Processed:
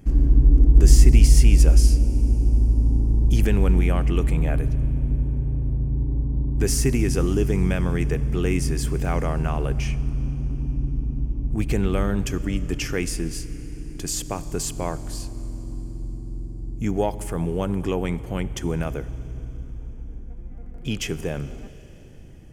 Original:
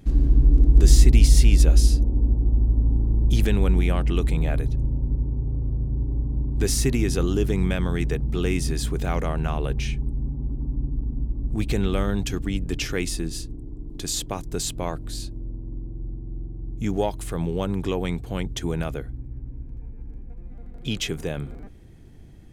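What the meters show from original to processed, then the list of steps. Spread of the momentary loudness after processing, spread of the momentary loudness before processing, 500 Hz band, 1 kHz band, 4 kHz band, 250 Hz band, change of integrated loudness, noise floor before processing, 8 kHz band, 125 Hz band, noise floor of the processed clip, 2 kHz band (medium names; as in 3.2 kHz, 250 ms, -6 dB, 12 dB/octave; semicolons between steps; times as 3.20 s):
19 LU, 19 LU, +1.0 dB, +1.0 dB, -2.5 dB, +1.5 dB, +1.5 dB, -39 dBFS, +0.5 dB, +1.5 dB, -37 dBFS, +0.5 dB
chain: peaking EQ 3.8 kHz -13 dB 0.32 oct; Schroeder reverb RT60 4 s, combs from 29 ms, DRR 15 dB; trim +1 dB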